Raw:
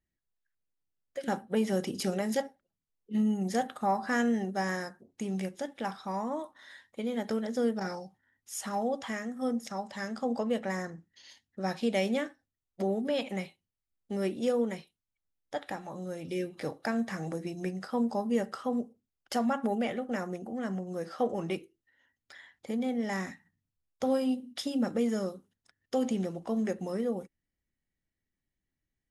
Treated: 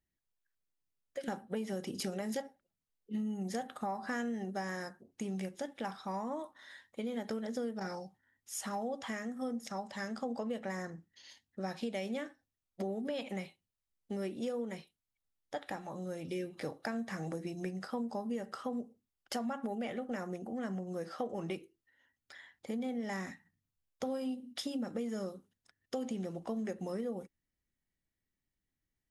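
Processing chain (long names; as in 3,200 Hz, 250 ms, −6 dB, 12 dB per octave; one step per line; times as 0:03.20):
downward compressor, threshold −32 dBFS, peak gain reduction 9.5 dB
level −2 dB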